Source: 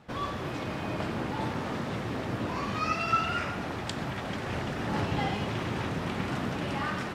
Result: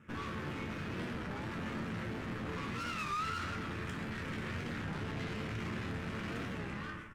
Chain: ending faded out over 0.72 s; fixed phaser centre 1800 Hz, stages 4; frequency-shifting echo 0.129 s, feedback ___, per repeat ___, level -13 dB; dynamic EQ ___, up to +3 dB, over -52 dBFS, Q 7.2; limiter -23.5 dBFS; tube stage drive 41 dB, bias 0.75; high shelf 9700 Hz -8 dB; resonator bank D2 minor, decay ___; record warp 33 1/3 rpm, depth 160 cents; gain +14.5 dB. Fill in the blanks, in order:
62%, -45 Hz, 180 Hz, 0.28 s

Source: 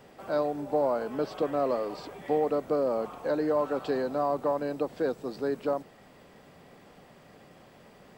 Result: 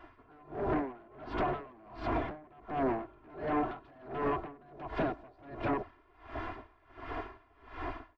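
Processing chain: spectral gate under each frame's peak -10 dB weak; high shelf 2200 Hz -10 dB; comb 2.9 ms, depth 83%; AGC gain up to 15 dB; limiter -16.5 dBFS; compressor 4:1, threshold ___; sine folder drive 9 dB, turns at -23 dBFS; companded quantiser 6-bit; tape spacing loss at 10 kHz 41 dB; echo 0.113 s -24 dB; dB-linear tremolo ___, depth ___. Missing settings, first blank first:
-34 dBFS, 1.4 Hz, 28 dB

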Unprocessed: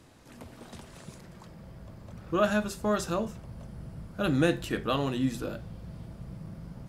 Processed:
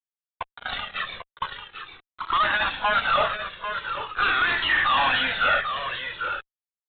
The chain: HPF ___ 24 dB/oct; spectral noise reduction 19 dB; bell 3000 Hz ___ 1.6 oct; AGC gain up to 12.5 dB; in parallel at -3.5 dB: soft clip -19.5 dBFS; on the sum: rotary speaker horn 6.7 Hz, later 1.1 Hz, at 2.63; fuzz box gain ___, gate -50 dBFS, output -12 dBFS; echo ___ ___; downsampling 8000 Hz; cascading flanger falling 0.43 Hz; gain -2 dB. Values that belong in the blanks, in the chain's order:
1100 Hz, -7 dB, 51 dB, 0.794 s, -8 dB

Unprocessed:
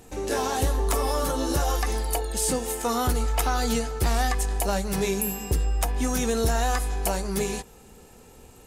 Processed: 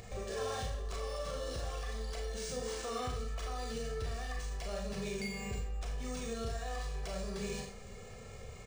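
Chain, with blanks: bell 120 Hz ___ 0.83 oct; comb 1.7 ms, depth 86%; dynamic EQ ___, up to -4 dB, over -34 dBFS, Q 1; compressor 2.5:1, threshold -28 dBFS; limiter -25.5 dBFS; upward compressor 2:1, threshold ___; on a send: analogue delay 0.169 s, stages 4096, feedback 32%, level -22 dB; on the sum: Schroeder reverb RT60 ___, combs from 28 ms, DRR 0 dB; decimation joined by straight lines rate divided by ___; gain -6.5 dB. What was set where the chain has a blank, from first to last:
+5.5 dB, 890 Hz, -39 dBFS, 0.46 s, 3×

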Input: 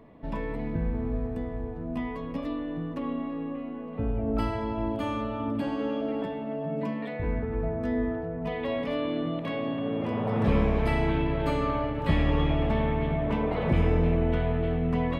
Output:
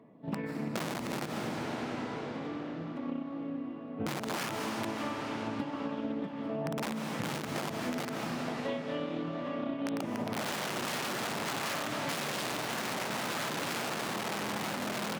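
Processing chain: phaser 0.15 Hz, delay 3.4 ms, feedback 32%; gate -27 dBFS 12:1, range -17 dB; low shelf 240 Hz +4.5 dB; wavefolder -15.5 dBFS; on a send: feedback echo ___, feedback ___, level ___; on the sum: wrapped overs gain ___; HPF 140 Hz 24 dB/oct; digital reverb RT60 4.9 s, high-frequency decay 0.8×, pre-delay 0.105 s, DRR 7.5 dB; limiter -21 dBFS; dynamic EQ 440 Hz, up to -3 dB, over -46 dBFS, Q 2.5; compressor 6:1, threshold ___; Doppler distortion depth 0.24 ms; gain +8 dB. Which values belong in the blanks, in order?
0.683 s, 59%, -19.5 dB, 21 dB, -40 dBFS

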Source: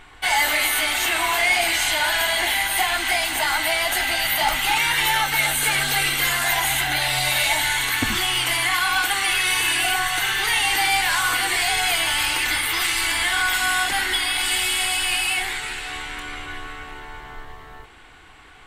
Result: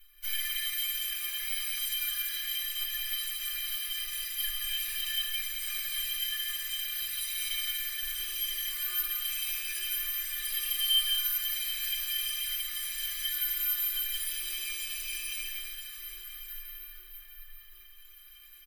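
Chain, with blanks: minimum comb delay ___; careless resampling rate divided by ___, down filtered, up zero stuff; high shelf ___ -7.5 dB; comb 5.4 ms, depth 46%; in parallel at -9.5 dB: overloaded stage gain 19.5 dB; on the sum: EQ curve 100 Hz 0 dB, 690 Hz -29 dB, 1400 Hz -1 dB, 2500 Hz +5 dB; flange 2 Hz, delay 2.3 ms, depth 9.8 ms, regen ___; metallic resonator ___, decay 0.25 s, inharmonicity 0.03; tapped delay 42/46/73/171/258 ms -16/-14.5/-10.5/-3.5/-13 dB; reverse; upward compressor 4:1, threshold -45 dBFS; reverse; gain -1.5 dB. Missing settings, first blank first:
1.9 ms, 3×, 9400 Hz, +51%, 360 Hz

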